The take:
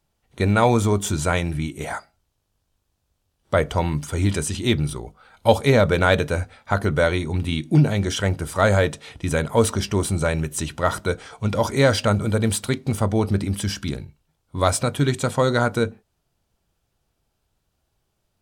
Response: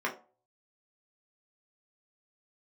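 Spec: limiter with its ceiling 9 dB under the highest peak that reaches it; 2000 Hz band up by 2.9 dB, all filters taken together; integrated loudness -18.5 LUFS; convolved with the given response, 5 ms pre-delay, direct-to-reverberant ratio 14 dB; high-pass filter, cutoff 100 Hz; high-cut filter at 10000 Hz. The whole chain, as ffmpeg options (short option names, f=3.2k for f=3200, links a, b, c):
-filter_complex "[0:a]highpass=100,lowpass=10k,equalizer=f=2k:t=o:g=4,alimiter=limit=-9dB:level=0:latency=1,asplit=2[a][b];[1:a]atrim=start_sample=2205,adelay=5[c];[b][c]afir=irnorm=-1:irlink=0,volume=-22.5dB[d];[a][d]amix=inputs=2:normalize=0,volume=5.5dB"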